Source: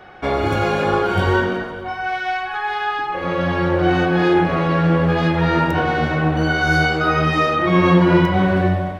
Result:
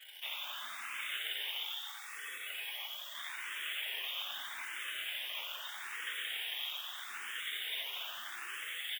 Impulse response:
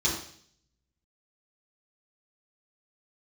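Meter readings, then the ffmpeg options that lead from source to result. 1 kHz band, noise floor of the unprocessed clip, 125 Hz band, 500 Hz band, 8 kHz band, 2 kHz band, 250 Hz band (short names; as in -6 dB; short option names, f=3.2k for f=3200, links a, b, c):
-30.5 dB, -29 dBFS, under -40 dB, under -40 dB, n/a, -19.0 dB, under -40 dB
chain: -filter_complex "[0:a]lowpass=f=2.6k:t=q:w=0.5098,lowpass=f=2.6k:t=q:w=0.6013,lowpass=f=2.6k:t=q:w=0.9,lowpass=f=2.6k:t=q:w=2.563,afreqshift=-3000,afftfilt=real='re*lt(hypot(re,im),0.251)':imag='im*lt(hypot(re,im),0.251)':win_size=1024:overlap=0.75,asplit=2[a][b];[b]acrusher=bits=5:mix=0:aa=0.000001,volume=-8dB[c];[a][c]amix=inputs=2:normalize=0,bandreject=f=50:t=h:w=6,bandreject=f=100:t=h:w=6,bandreject=f=150:t=h:w=6,bandreject=f=200:t=h:w=6,bandreject=f=250:t=h:w=6,bandreject=f=300:t=h:w=6,bandreject=f=350:t=h:w=6,bandreject=f=400:t=h:w=6,bandreject=f=450:t=h:w=6,bandreject=f=500:t=h:w=6,acontrast=64,afftfilt=real='hypot(re,im)*cos(2*PI*random(0))':imag='hypot(re,im)*sin(2*PI*random(1))':win_size=512:overlap=0.75,aeval=exprs='val(0)*sin(2*PI*700*n/s)':c=same,highpass=240,aderivative,asplit=2[d][e];[e]asplit=5[f][g][h][i][j];[f]adelay=89,afreqshift=62,volume=-8.5dB[k];[g]adelay=178,afreqshift=124,volume=-14.9dB[l];[h]adelay=267,afreqshift=186,volume=-21.3dB[m];[i]adelay=356,afreqshift=248,volume=-27.6dB[n];[j]adelay=445,afreqshift=310,volume=-34dB[o];[k][l][m][n][o]amix=inputs=5:normalize=0[p];[d][p]amix=inputs=2:normalize=0,asplit=2[q][r];[r]afreqshift=0.79[s];[q][s]amix=inputs=2:normalize=1"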